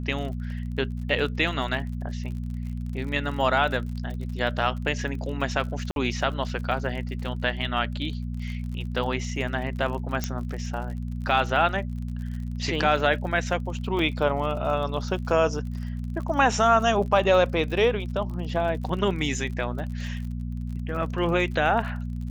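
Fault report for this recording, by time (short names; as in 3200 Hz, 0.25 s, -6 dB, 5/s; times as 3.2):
crackle 46/s -35 dBFS
hum 60 Hz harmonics 4 -31 dBFS
5.91–5.96 gap 52 ms
10.24 pop -12 dBFS
13.99 gap 2.9 ms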